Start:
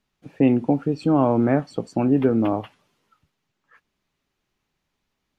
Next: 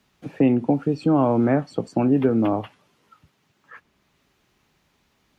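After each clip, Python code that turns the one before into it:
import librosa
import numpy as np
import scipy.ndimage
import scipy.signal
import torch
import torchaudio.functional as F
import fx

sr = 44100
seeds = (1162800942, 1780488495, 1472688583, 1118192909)

y = scipy.signal.sosfilt(scipy.signal.butter(2, 44.0, 'highpass', fs=sr, output='sos'), x)
y = fx.band_squash(y, sr, depth_pct=40)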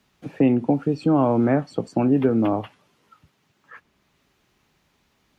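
y = x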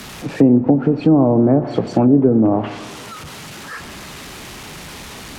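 y = x + 0.5 * 10.0 ** (-34.5 / 20.0) * np.sign(x)
y = fx.rev_schroeder(y, sr, rt60_s=1.6, comb_ms=25, drr_db=11.5)
y = fx.env_lowpass_down(y, sr, base_hz=620.0, full_db=-14.5)
y = F.gain(torch.from_numpy(y), 6.0).numpy()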